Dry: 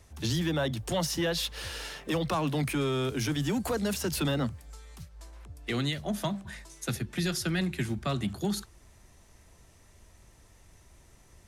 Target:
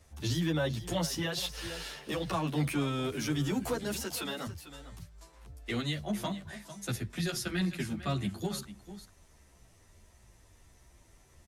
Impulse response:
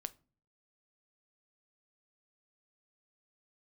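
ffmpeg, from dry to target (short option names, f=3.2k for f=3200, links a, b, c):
-filter_complex "[0:a]asettb=1/sr,asplit=3[a][b][c];[a]atrim=end=4.034[d];[b]atrim=start=4.03:end=4.47,asetpts=PTS-STARTPTS,afade=t=in:d=0.004:c=qsin,afade=t=out:st=0.436:d=0.004:c=qsin,highpass=f=620:p=1[e];[c]atrim=start=4.466[f];[d][e]acrossfade=d=0.004:c1=hsin:c2=qsin[g];[g][f]acrossfade=d=0.004:c1=qsin:c2=hsin,aecho=1:1:448:0.2,asplit=2[h][i];[i]adelay=10.7,afreqshift=-1.5[j];[h][j]amix=inputs=2:normalize=1"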